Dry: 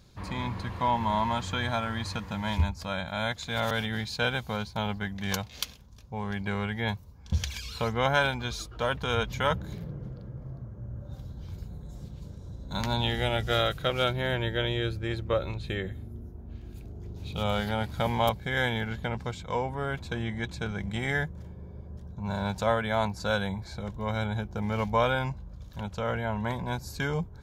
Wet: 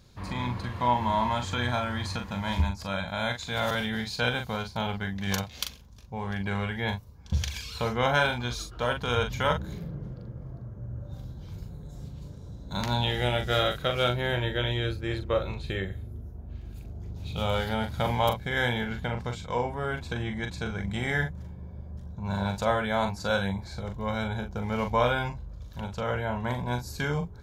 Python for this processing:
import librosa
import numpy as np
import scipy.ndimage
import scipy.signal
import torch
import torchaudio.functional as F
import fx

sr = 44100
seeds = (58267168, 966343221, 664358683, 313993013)

y = fx.doubler(x, sr, ms=41.0, db=-6.5)